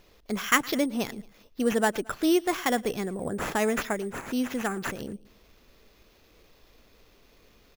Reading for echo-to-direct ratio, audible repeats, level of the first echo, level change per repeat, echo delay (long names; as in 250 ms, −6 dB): −21.5 dB, 2, −22.5 dB, −6.0 dB, 112 ms